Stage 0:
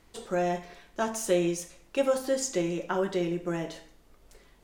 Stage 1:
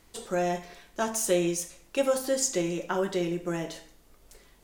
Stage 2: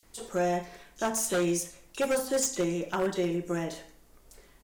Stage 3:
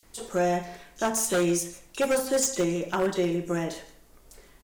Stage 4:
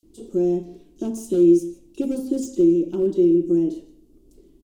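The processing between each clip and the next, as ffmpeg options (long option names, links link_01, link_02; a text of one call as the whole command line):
ffmpeg -i in.wav -af "highshelf=frequency=5300:gain=8" out.wav
ffmpeg -i in.wav -filter_complex "[0:a]acrossover=split=3400[link_01][link_02];[link_01]adelay=30[link_03];[link_03][link_02]amix=inputs=2:normalize=0,aeval=exprs='0.0944*(abs(mod(val(0)/0.0944+3,4)-2)-1)':channel_layout=same" out.wav
ffmpeg -i in.wav -af "aecho=1:1:154:0.112,volume=3dB" out.wav
ffmpeg -i in.wav -af "firequalizer=gain_entry='entry(150,0);entry(330,14);entry(480,-6);entry(790,-17);entry(1800,-28);entry(2800,-13)':delay=0.05:min_phase=1" out.wav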